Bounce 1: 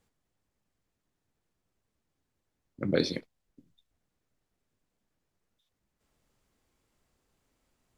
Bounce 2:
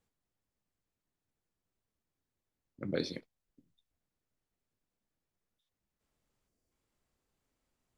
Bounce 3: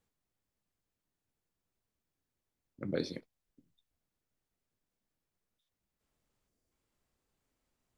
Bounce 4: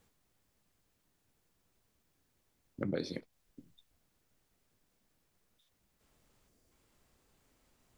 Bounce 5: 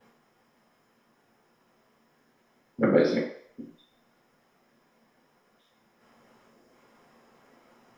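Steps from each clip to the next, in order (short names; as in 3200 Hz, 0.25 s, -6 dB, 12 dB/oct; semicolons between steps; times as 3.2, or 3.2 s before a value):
spectral gain 6.48–6.72, 720–4400 Hz -7 dB; gain -7.5 dB
dynamic EQ 3100 Hz, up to -4 dB, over -53 dBFS, Q 0.74
compressor 4:1, threshold -45 dBFS, peak gain reduction 15 dB; gain +11 dB
reverb RT60 0.60 s, pre-delay 3 ms, DRR -13.5 dB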